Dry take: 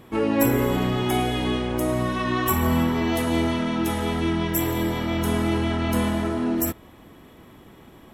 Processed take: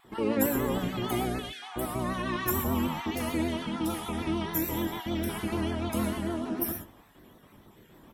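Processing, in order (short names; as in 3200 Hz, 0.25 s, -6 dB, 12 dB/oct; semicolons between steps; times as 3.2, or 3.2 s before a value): random spectral dropouts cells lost 35%; high shelf 11000 Hz +6.5 dB; speakerphone echo 0.24 s, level -24 dB; non-linear reverb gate 0.15 s flat, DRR 1.5 dB; vibrato 6.7 Hz 72 cents; gain -7.5 dB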